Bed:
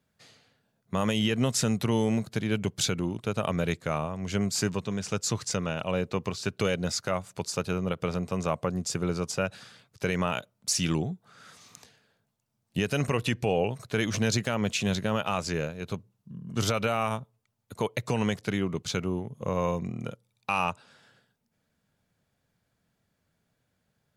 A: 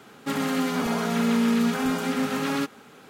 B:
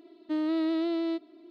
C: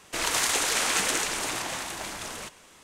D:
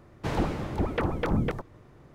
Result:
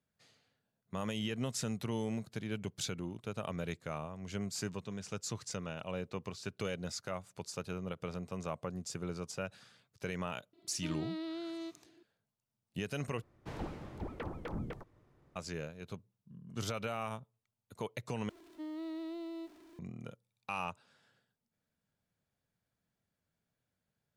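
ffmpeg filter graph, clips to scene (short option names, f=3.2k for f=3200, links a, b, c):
-filter_complex "[2:a]asplit=2[a][b];[0:a]volume=-11dB[c];[a]highshelf=f=2.2k:g=9[d];[b]aeval=exprs='val(0)+0.5*0.00841*sgn(val(0))':c=same[e];[c]asplit=3[f][g][h];[f]atrim=end=13.224[i];[4:a]atrim=end=2.14,asetpts=PTS-STARTPTS,volume=-14dB[j];[g]atrim=start=15.356:end=18.294[k];[e]atrim=end=1.5,asetpts=PTS-STARTPTS,volume=-14.5dB[l];[h]atrim=start=19.786[m];[d]atrim=end=1.5,asetpts=PTS-STARTPTS,volume=-13dB,afade=t=in:d=0.004:c=hsin,afade=t=out:st=1.496:d=0.004:c=hsin,adelay=10530[n];[i][j]acrossfade=d=0.004:c1=hsin:c2=hsin[o];[o][k]acrossfade=d=0.004:c1=hsin:c2=hsin[p];[p][l]acrossfade=d=0.004:c1=hsin:c2=hsin[q];[q][m]acrossfade=d=0.004:c1=hsin:c2=hsin[r];[r][n]amix=inputs=2:normalize=0"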